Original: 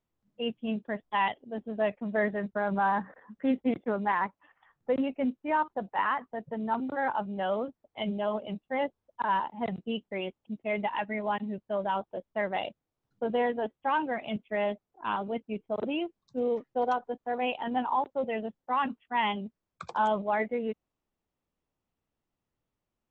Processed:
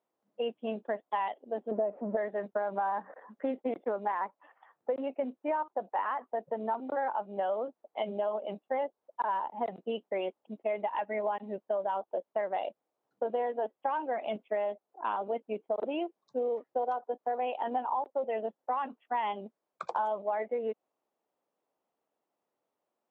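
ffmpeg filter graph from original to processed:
-filter_complex "[0:a]asettb=1/sr,asplit=3[a][b][c];[a]atrim=end=1.714[d];[b]atrim=start=1.71:end=2.17,asetpts=PTS-STARTPTS,afade=t=in:d=0.004:c=qsin,afade=t=out:st=0.456:d=0.004:c=qsin,aeval=exprs='val(0)+0.5*0.00631*sgn(val(0))':c=same,lowpass=1k,equalizer=f=270:t=o:w=2.2:g=8[e];[c]atrim=start=2.166[f];[d][e]acrossfade=d=0.004:c1=hsin:c2=qsin[g];[g][f]acrossfade=d=0.004:c1=qsin:c2=hsin,highpass=260,equalizer=f=650:w=0.6:g=13.5,acompressor=threshold=-24dB:ratio=6,volume=-5dB"

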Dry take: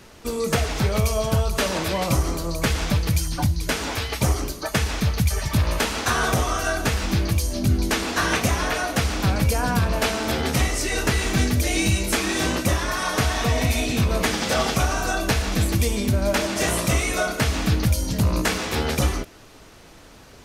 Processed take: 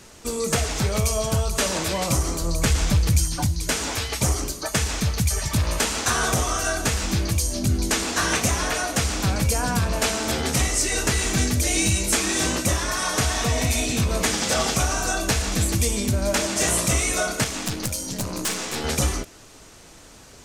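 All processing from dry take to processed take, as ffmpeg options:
-filter_complex "[0:a]asettb=1/sr,asplit=3[a][b][c];[a]atrim=end=2.414[d];[b]atrim=start=2.41:end=3.26,asetpts=PTS-STARTPTS,afade=t=in:d=0.004:c=qsin,afade=t=out:st=0.846:d=0.004:c=qsin,lowshelf=f=120:g=8,asoftclip=type=hard:threshold=-9dB[e];[c]atrim=start=3.256[f];[d][e]acrossfade=d=0.004:c1=hsin:c2=qsin[g];[g][f]acrossfade=d=0.004:c1=qsin:c2=hsin,asettb=1/sr,asplit=3[h][i][j];[h]atrim=end=17.444[k];[i]atrim=start=17.44:end=18.84,asetpts=PTS-STARTPTS,afade=t=in:d=0.004:c=qsin,afade=t=out:st=1.396:d=0.004:c=qsin,highpass=140,aeval=exprs='(mod(5.31*val(0)+1,2)-1)/5.31':c=same,aeval=exprs='(tanh(10*val(0)+0.55)-tanh(0.55))/10':c=same[l];[j]atrim=start=18.836[m];[k][l]acrossfade=d=0.004:c1=hsin:c2=qsin[n];[n][m]acrossfade=d=0.004:c1=qsin:c2=hsin,acontrast=55,equalizer=f=7.6k:t=o:w=1:g=9.5,volume=-7.5dB"

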